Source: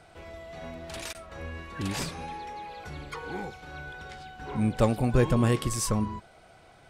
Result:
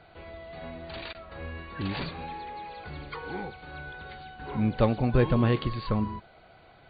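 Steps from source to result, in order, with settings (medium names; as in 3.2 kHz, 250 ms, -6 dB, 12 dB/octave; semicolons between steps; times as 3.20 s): brick-wall FIR low-pass 4.7 kHz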